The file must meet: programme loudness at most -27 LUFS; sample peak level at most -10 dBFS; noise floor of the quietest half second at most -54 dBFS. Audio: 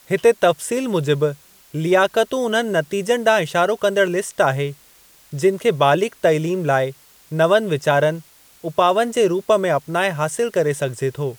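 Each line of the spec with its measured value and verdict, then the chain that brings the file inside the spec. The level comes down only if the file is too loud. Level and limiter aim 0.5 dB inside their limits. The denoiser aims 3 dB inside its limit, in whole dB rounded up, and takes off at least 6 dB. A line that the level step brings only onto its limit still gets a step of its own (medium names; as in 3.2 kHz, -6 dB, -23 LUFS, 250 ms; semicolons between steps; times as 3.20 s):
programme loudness -19.0 LUFS: fail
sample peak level -4.0 dBFS: fail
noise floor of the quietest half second -51 dBFS: fail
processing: trim -8.5 dB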